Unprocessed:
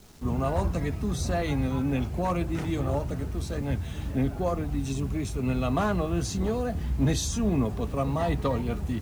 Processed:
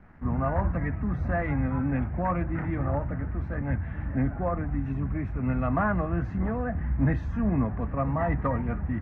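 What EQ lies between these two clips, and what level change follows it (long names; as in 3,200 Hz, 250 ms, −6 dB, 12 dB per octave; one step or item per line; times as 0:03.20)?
high-frequency loss of the air 360 metres
parametric band 410 Hz −9.5 dB 0.43 octaves
high shelf with overshoot 2,600 Hz −12.5 dB, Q 3
+1.0 dB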